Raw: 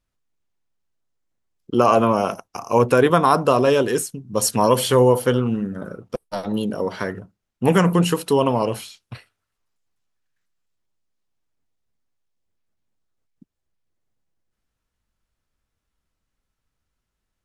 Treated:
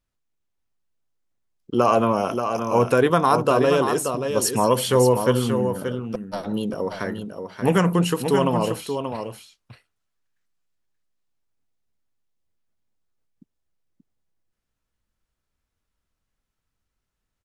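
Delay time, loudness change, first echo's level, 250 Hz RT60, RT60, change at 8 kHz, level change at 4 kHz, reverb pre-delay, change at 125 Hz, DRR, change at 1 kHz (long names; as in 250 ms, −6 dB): 581 ms, −2.0 dB, −7.0 dB, no reverb audible, no reverb audible, −1.5 dB, −1.5 dB, no reverb audible, −1.5 dB, no reverb audible, −1.5 dB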